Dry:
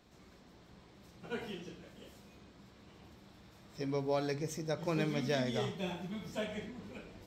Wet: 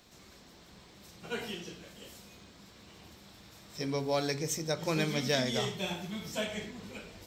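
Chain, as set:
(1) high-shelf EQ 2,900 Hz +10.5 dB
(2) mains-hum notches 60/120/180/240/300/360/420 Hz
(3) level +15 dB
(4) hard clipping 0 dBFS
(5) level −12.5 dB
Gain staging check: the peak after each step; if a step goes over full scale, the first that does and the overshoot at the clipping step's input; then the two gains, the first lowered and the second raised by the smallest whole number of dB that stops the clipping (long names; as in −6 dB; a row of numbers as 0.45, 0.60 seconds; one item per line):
−17.5, −18.0, −3.0, −3.0, −15.5 dBFS
no step passes full scale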